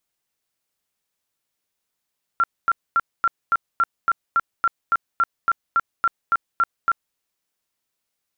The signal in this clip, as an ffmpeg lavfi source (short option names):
-f lavfi -i "aevalsrc='0.2*sin(2*PI*1370*mod(t,0.28))*lt(mod(t,0.28),51/1370)':d=4.76:s=44100"